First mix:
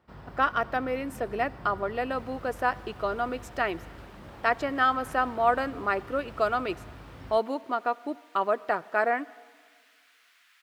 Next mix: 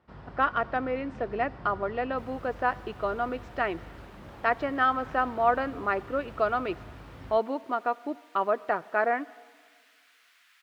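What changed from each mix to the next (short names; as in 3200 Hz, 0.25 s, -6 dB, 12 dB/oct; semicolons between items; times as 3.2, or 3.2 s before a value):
speech: add Gaussian blur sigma 2.1 samples; first sound: add air absorption 77 m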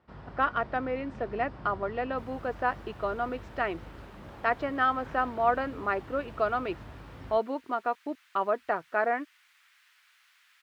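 reverb: off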